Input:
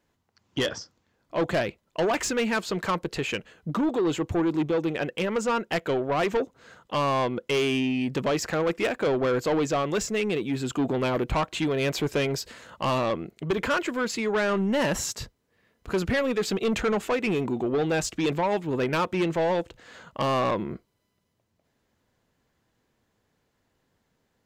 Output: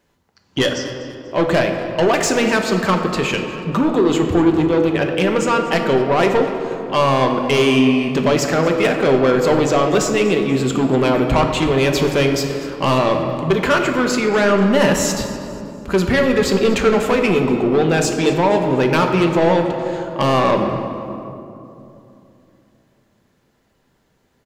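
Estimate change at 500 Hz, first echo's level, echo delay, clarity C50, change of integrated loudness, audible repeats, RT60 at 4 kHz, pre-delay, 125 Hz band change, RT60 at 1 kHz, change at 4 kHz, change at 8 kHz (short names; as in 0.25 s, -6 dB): +10.5 dB, -17.0 dB, 0.243 s, 5.0 dB, +10.0 dB, 3, 1.5 s, 5 ms, +11.0 dB, 2.7 s, +9.0 dB, +9.0 dB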